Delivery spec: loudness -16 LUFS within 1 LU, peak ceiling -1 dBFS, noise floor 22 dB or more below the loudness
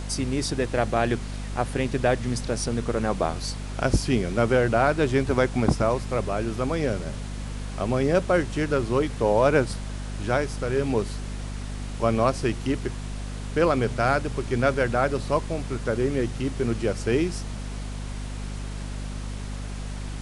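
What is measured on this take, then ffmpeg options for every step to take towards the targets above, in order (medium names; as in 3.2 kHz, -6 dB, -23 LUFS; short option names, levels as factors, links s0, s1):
hum 50 Hz; highest harmonic 250 Hz; hum level -30 dBFS; noise floor -33 dBFS; noise floor target -48 dBFS; loudness -26.0 LUFS; peak level -8.0 dBFS; loudness target -16.0 LUFS
-> -af "bandreject=f=50:t=h:w=6,bandreject=f=100:t=h:w=6,bandreject=f=150:t=h:w=6,bandreject=f=200:t=h:w=6,bandreject=f=250:t=h:w=6"
-af "afftdn=nr=15:nf=-33"
-af "volume=3.16,alimiter=limit=0.891:level=0:latency=1"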